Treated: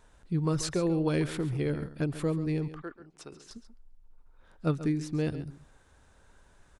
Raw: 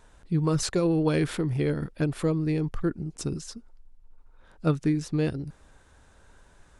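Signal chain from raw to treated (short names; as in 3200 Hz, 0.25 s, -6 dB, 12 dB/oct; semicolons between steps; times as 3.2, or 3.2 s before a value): 2.68–3.51 three-band isolator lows -20 dB, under 470 Hz, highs -12 dB, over 4000 Hz; on a send: echo 0.137 s -13.5 dB; on the sum: gain -4 dB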